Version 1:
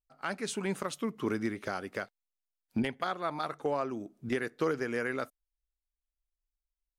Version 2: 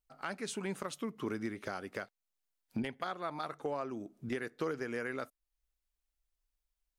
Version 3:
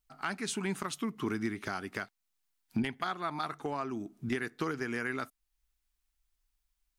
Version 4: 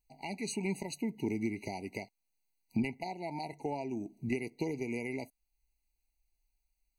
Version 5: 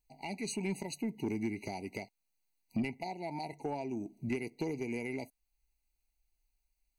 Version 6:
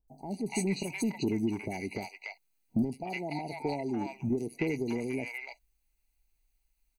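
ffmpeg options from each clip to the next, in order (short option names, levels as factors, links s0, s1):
-af "acompressor=threshold=0.00224:ratio=1.5,volume=1.5"
-af "equalizer=f=530:w=2.8:g=-12.5,volume=1.88"
-af "afftfilt=real='re*eq(mod(floor(b*sr/1024/970),2),0)':imag='im*eq(mod(floor(b*sr/1024/970),2),0)':win_size=1024:overlap=0.75"
-af "asoftclip=type=tanh:threshold=0.0562"
-filter_complex "[0:a]acrossover=split=810|5100[s0][s1][s2];[s2]adelay=80[s3];[s1]adelay=290[s4];[s0][s4][s3]amix=inputs=3:normalize=0,volume=1.88"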